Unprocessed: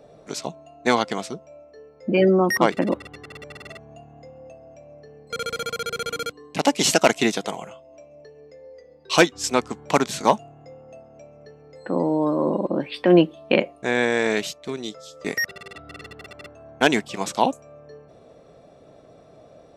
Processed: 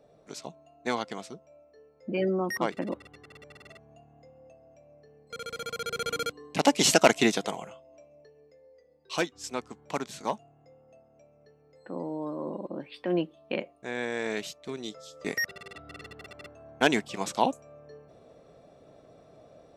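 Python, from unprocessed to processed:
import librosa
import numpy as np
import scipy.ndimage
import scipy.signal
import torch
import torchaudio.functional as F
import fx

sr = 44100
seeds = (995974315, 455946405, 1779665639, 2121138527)

y = fx.gain(x, sr, db=fx.line((5.41, -10.5), (6.11, -2.5), (7.35, -2.5), (8.68, -13.0), (13.85, -13.0), (14.98, -5.0)))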